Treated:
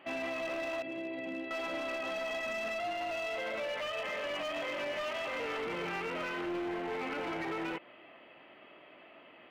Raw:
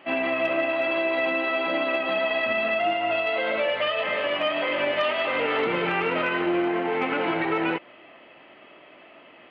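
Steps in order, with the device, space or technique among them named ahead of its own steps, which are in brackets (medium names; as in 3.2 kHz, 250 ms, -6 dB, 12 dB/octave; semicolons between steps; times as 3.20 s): 0.82–1.51 s: FFT filter 270 Hz 0 dB, 1.3 kHz -20 dB, 1.9 kHz -12 dB; limiter into clipper (peak limiter -21.5 dBFS, peak gain reduction 6 dB; hard clipper -26.5 dBFS, distortion -15 dB); trim -6 dB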